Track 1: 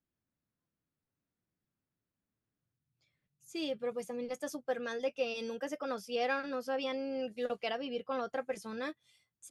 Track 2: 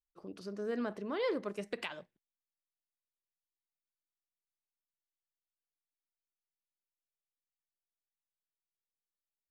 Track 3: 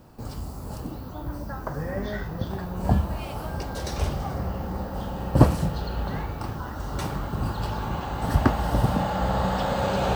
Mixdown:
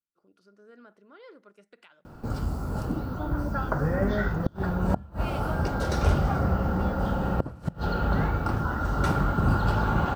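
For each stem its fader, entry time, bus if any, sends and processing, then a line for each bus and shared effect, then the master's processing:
-14.0 dB, 0.00 s, no send, none
-16.0 dB, 0.00 s, no send, none
+2.5 dB, 2.05 s, no send, tilt EQ -2 dB/octave; hum notches 60/120 Hz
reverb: none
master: bass shelf 110 Hz -6.5 dB; inverted gate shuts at -10 dBFS, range -27 dB; small resonant body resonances 1.4 kHz, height 14 dB, ringing for 30 ms

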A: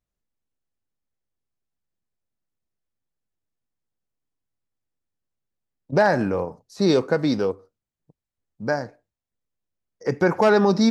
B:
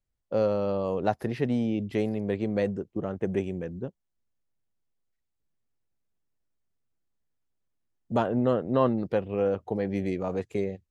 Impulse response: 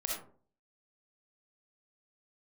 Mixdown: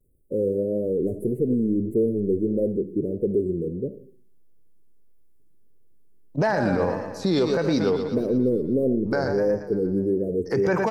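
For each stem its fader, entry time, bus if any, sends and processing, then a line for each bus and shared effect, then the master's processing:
+3.0 dB, 0.45 s, no send, echo send -10.5 dB, none
-6.0 dB, 0.00 s, send -9.5 dB, no echo send, power-law waveshaper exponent 0.7; inverse Chebyshev band-stop 810–5500 Hz, stop band 40 dB; peaking EQ 430 Hz +9.5 dB 1.3 oct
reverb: on, RT60 0.45 s, pre-delay 20 ms
echo: feedback delay 118 ms, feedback 59%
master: vibrato 1.6 Hz 88 cents; peak limiter -13.5 dBFS, peak gain reduction 11 dB

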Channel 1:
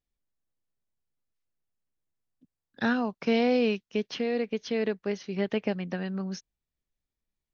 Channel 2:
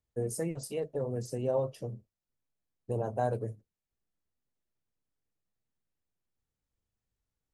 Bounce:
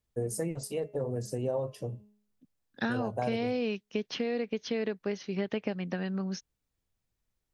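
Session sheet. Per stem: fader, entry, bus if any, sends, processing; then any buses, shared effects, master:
0.0 dB, 0.00 s, no send, none
+2.0 dB, 0.00 s, no send, de-hum 208.4 Hz, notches 17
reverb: none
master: compression 6:1, threshold -27 dBFS, peak gain reduction 8.5 dB

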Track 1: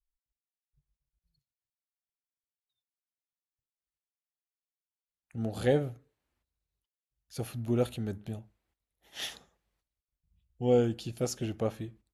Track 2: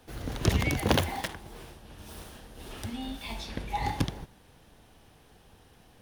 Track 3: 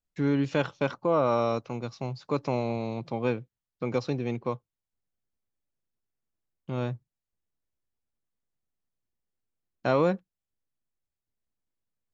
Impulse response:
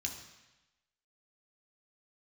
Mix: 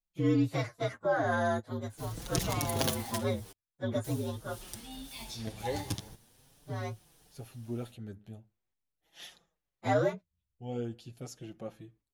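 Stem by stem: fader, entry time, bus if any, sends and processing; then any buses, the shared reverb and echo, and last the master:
-7.5 dB, 0.00 s, no send, none
-6.5 dB, 1.90 s, muted 3.52–4.04 s, no send, tone controls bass +2 dB, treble +14 dB
+0.5 dB, 0.00 s, no send, frequency axis rescaled in octaves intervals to 119%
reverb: none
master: flange 0.43 Hz, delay 5.4 ms, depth 4.9 ms, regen -3%

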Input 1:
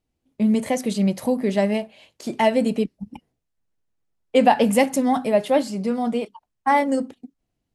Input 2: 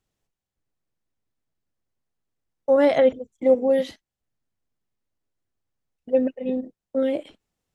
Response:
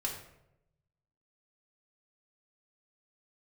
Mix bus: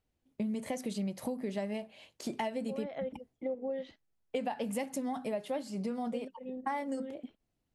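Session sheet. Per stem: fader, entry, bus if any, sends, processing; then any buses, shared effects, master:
-5.0 dB, 0.00 s, no send, none
-5.5 dB, 0.00 s, no send, low-pass 3.6 kHz 12 dB/octave; auto duck -10 dB, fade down 0.70 s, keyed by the first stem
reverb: none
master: compression 6:1, threshold -33 dBFS, peak gain reduction 17 dB

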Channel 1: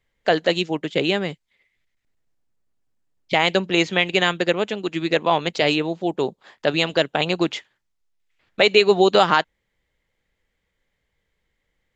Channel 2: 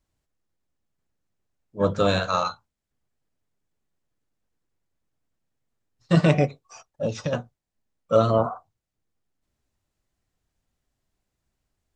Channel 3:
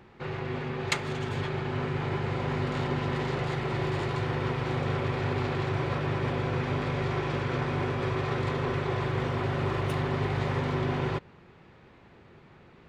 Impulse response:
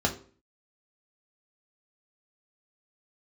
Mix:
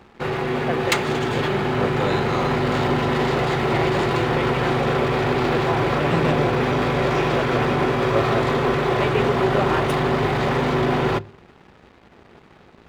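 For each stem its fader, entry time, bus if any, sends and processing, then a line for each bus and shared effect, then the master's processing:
-8.5 dB, 0.40 s, no send, boxcar filter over 10 samples
-6.0 dB, 0.00 s, no send, none
+3.0 dB, 0.00 s, send -23.5 dB, waveshaping leveller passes 2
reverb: on, RT60 0.45 s, pre-delay 3 ms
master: none

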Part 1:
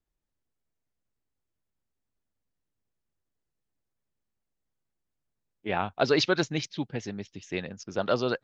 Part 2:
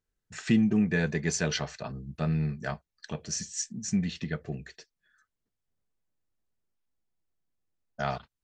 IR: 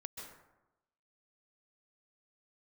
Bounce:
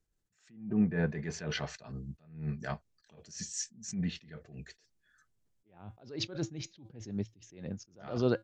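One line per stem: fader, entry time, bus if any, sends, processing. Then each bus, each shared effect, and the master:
+1.5 dB, 0.00 s, no send, tilt shelf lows +8 dB, about 640 Hz; feedback comb 110 Hz, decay 0.26 s, harmonics odd, mix 40%
-1.0 dB, 0.00 s, no send, low-pass that closes with the level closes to 1.4 kHz, closed at -22.5 dBFS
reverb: none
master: peaking EQ 7.1 kHz +5 dB 1 oct; attacks held to a fixed rise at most 120 dB/s

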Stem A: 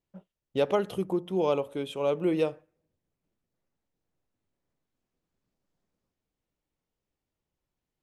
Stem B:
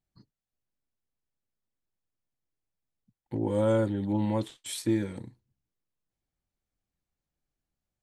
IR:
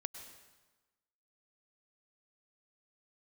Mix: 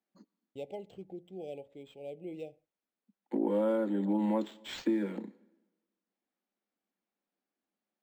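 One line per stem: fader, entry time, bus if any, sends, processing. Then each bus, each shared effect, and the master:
-16.0 dB, 0.00 s, no send, FFT band-reject 850–2000 Hz; expander -44 dBFS
+1.5 dB, 0.00 s, send -13.5 dB, steep high-pass 190 Hz 72 dB/octave; treble shelf 4.6 kHz -11.5 dB; compression 10:1, threshold -28 dBFS, peak gain reduction 7.5 dB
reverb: on, RT60 1.2 s, pre-delay 93 ms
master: decimation joined by straight lines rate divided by 4×

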